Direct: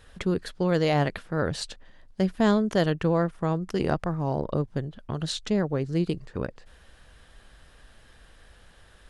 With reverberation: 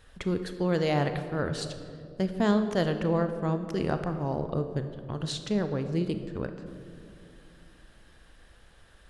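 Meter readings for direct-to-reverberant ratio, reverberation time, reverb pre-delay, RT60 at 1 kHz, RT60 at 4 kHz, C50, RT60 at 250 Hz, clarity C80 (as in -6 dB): 8.0 dB, 2.4 s, 29 ms, 1.9 s, 1.2 s, 9.0 dB, 3.4 s, 10.5 dB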